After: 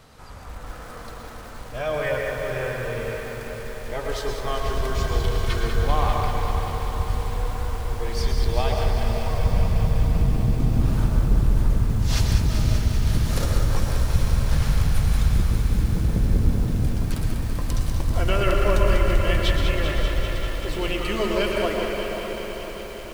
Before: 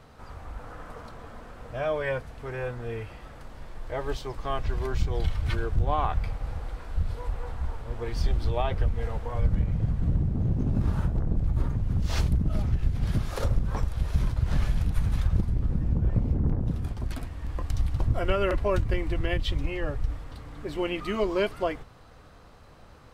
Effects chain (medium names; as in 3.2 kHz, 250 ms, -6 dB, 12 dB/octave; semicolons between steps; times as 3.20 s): treble shelf 3 kHz +10.5 dB; echo that smears into a reverb 516 ms, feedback 63%, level -8.5 dB; on a send at -2 dB: reverberation RT60 1.1 s, pre-delay 103 ms; on the sum: bit-crushed delay 195 ms, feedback 80%, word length 7-bit, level -7 dB